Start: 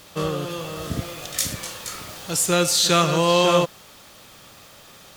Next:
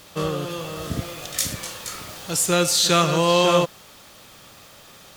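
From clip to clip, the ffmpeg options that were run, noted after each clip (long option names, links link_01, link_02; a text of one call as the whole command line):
ffmpeg -i in.wav -af anull out.wav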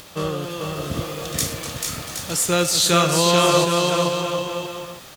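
ffmpeg -i in.wav -af "acompressor=mode=upward:threshold=-38dB:ratio=2.5,aecho=1:1:440|770|1018|1203|1342:0.631|0.398|0.251|0.158|0.1" out.wav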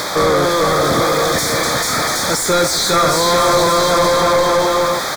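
ffmpeg -i in.wav -filter_complex "[0:a]asplit=2[link_01][link_02];[link_02]highpass=frequency=720:poles=1,volume=39dB,asoftclip=type=tanh:threshold=-2dB[link_03];[link_01][link_03]amix=inputs=2:normalize=0,lowpass=frequency=2800:poles=1,volume=-6dB,asuperstop=centerf=2800:order=4:qfactor=2.3,volume=-3dB" out.wav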